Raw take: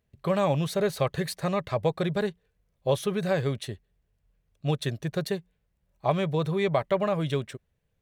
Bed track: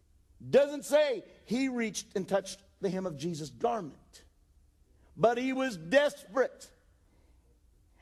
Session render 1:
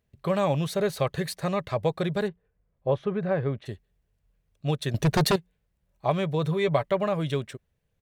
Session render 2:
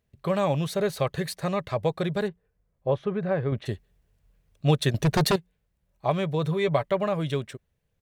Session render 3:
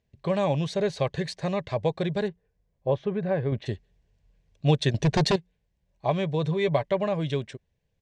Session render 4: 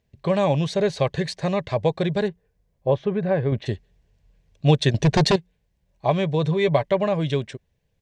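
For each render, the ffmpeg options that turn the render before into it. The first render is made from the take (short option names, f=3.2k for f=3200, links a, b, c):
-filter_complex "[0:a]asplit=3[a][b][c];[a]afade=t=out:st=2.27:d=0.02[d];[b]lowpass=1.7k,afade=t=in:st=2.27:d=0.02,afade=t=out:st=3.65:d=0.02[e];[c]afade=t=in:st=3.65:d=0.02[f];[d][e][f]amix=inputs=3:normalize=0,asettb=1/sr,asplit=3[g][h][i];[g]atrim=end=4.944[j];[h]atrim=start=4.94:end=5.36,asetpts=PTS-STARTPTS,afade=t=in:d=0.004:c=qsin,afade=t=out:st=0.416:d=0.004:c=qsin,aeval=exprs='0.141*sin(PI/2*2.82*val(0)/0.141)':c=same[k];[i]atrim=start=5.356[l];[j][k]acrossfade=d=0.004:c1=hsin:c2=qsin[m];[m][l]acrossfade=d=0.004:c1=qsin:c2=hsin,asplit=3[n][o][p];[n]afade=t=out:st=6.42:d=0.02[q];[o]aecho=1:1:7:0.44,afade=t=in:st=6.42:d=0.02,afade=t=out:st=6.83:d=0.02[r];[p]afade=t=in:st=6.83:d=0.02[s];[q][r][s]amix=inputs=3:normalize=0"
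-filter_complex "[0:a]asettb=1/sr,asplit=3[a][b][c];[a]atrim=end=3.524[d];[b]atrim=start=3.52:end=4.91,asetpts=PTS-STARTPTS,afade=t=in:d=0.004:c=qsin,afade=t=out:st=1.386:d=0.004:c=qsin,acontrast=46[e];[c]atrim=start=4.906[f];[d][e]acrossfade=d=0.004:c1=hsin:c2=qsin[g];[g][f]acrossfade=d=0.004:c1=qsin:c2=hsin"
-af "lowpass=f=7.1k:w=0.5412,lowpass=f=7.1k:w=1.3066,equalizer=f=1.3k:t=o:w=0.23:g=-13"
-af "volume=4.5dB"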